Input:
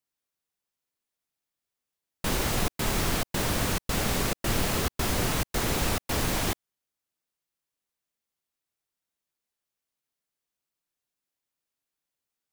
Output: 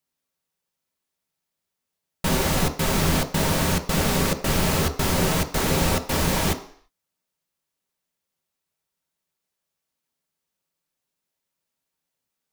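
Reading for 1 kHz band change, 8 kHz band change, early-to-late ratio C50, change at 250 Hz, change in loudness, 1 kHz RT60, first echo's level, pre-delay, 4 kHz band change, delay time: +5.5 dB, +4.5 dB, 12.5 dB, +7.0 dB, +5.5 dB, 0.55 s, no echo, 3 ms, +4.5 dB, no echo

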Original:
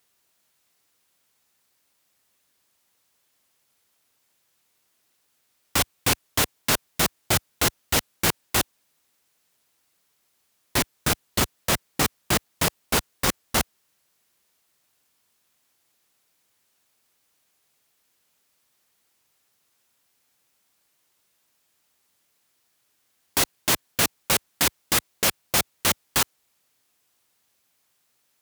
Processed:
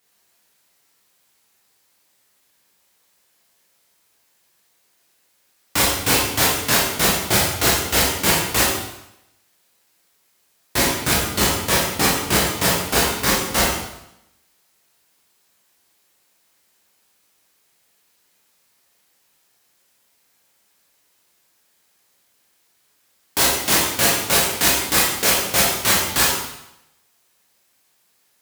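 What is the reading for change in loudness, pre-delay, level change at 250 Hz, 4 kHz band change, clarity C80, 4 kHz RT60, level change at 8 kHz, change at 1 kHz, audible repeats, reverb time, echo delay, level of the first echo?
+6.5 dB, 7 ms, +6.0 dB, +6.5 dB, 4.0 dB, 0.80 s, +6.5 dB, +6.5 dB, no echo, 0.85 s, no echo, no echo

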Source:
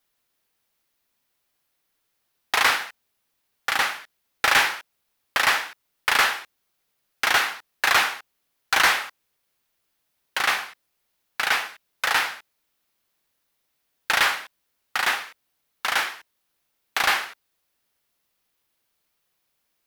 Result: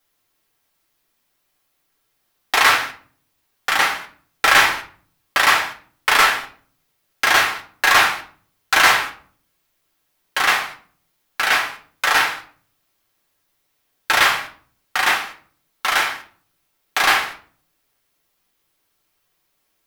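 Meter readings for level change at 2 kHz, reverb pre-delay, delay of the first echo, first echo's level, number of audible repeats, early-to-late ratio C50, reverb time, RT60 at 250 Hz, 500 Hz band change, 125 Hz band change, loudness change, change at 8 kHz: +5.5 dB, 4 ms, no echo, no echo, no echo, 12.0 dB, 0.50 s, 0.75 s, +6.5 dB, no reading, +5.0 dB, +5.0 dB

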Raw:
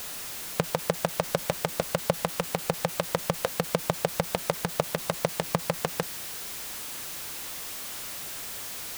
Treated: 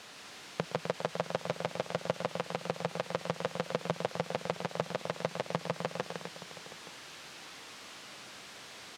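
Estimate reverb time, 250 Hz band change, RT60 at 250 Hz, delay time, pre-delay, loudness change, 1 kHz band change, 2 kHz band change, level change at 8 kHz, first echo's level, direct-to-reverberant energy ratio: no reverb, -6.5 dB, no reverb, 116 ms, no reverb, -7.0 dB, -5.0 dB, -5.5 dB, -15.0 dB, -15.5 dB, no reverb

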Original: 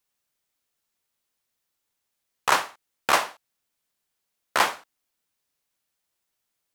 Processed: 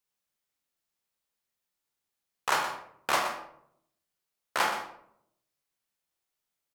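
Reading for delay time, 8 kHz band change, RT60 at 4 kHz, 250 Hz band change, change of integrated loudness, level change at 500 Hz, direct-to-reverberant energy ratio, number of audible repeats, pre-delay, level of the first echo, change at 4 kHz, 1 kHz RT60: 122 ms, -6.0 dB, 0.35 s, -4.5 dB, -6.0 dB, -5.0 dB, 2.5 dB, 1, 23 ms, -11.0 dB, -5.5 dB, 0.60 s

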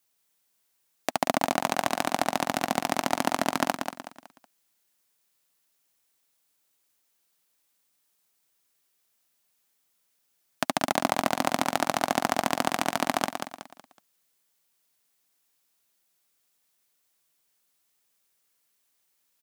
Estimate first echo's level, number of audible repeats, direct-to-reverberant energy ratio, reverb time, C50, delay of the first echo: -6.5 dB, 4, no reverb, no reverb, no reverb, 186 ms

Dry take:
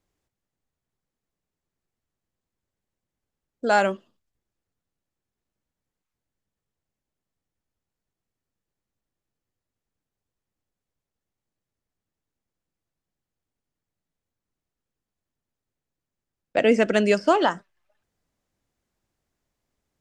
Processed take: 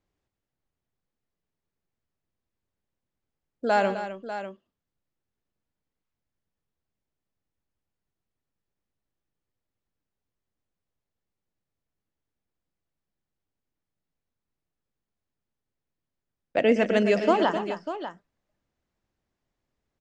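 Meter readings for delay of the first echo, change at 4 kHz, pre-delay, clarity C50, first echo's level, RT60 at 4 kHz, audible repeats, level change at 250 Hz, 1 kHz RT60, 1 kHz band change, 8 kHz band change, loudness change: 119 ms, -3.0 dB, no reverb, no reverb, -13.0 dB, no reverb, 3, -1.5 dB, no reverb, -2.0 dB, no reading, -3.5 dB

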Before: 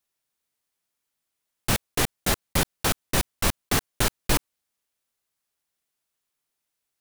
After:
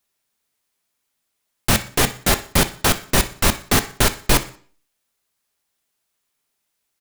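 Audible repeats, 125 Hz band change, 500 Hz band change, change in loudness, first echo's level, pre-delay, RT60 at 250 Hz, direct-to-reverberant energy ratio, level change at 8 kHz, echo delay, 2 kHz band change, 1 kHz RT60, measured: 2, +6.5 dB, +7.0 dB, +7.0 dB, -18.0 dB, 3 ms, 0.55 s, 9.0 dB, +7.0 dB, 61 ms, +7.0 dB, 0.45 s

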